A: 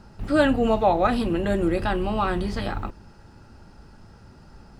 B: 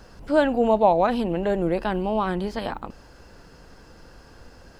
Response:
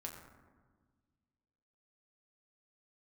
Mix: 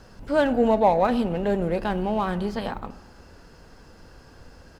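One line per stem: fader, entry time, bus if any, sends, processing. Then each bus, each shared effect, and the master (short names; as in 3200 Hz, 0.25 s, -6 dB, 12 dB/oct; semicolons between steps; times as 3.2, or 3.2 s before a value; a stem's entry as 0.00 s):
-9.0 dB, 0.00 s, no send, median filter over 41 samples
-3.0 dB, 0.3 ms, send -8 dB, dry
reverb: on, RT60 1.5 s, pre-delay 6 ms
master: dry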